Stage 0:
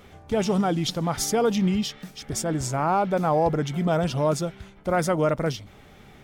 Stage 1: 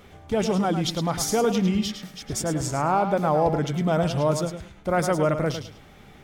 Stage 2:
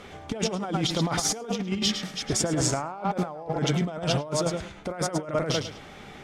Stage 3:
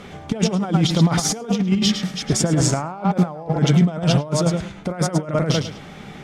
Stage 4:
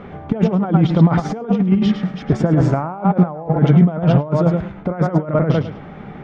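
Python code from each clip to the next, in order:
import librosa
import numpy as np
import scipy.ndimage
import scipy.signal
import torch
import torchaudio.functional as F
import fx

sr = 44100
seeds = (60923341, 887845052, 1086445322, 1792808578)

y1 = fx.echo_feedback(x, sr, ms=106, feedback_pct=21, wet_db=-9.0)
y2 = fx.low_shelf(y1, sr, hz=160.0, db=-9.5)
y2 = fx.over_compress(y2, sr, threshold_db=-29.0, ratio=-0.5)
y2 = scipy.signal.sosfilt(scipy.signal.butter(2, 8800.0, 'lowpass', fs=sr, output='sos'), y2)
y2 = y2 * 10.0 ** (2.5 / 20.0)
y3 = fx.peak_eq(y2, sr, hz=170.0, db=8.5, octaves=0.96)
y3 = y3 * 10.0 ** (4.0 / 20.0)
y4 = scipy.signal.sosfilt(scipy.signal.butter(2, 1500.0, 'lowpass', fs=sr, output='sos'), y3)
y4 = y4 * 10.0 ** (4.0 / 20.0)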